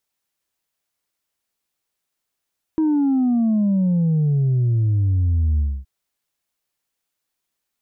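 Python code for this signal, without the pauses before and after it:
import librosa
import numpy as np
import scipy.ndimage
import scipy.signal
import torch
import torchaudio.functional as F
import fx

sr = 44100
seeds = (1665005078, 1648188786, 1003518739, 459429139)

y = fx.sub_drop(sr, level_db=-15.5, start_hz=320.0, length_s=3.07, drive_db=1.5, fade_s=0.26, end_hz=65.0)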